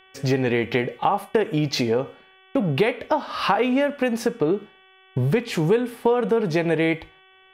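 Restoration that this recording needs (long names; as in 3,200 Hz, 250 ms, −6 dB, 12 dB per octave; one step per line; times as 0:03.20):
hum removal 378.9 Hz, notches 9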